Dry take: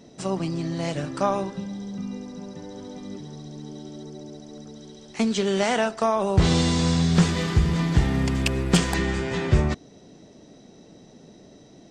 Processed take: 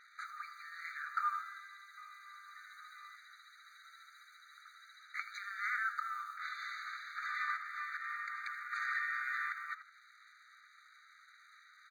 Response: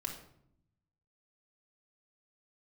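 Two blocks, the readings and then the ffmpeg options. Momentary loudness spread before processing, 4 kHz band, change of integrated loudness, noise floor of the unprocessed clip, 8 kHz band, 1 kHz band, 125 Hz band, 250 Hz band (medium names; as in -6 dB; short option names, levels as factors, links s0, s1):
19 LU, -22.5 dB, -16.0 dB, -50 dBFS, -27.0 dB, -10.0 dB, under -40 dB, under -40 dB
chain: -filter_complex "[0:a]lowpass=1100,asplit=2[s0][s1];[s1]acompressor=threshold=0.0158:ratio=6,volume=1.41[s2];[s0][s2]amix=inputs=2:normalize=0,alimiter=limit=0.119:level=0:latency=1:release=44,aeval=exprs='sgn(val(0))*max(abs(val(0))-0.00119,0)':c=same,asplit=2[s3][s4];[s4]asplit=3[s5][s6][s7];[s5]adelay=81,afreqshift=92,volume=0.2[s8];[s6]adelay=162,afreqshift=184,volume=0.0661[s9];[s7]adelay=243,afreqshift=276,volume=0.0216[s10];[s8][s9][s10]amix=inputs=3:normalize=0[s11];[s3][s11]amix=inputs=2:normalize=0,afftfilt=real='re*eq(mod(floor(b*sr/1024/1200),2),1)':imag='im*eq(mod(floor(b*sr/1024/1200),2),1)':win_size=1024:overlap=0.75,volume=2.11"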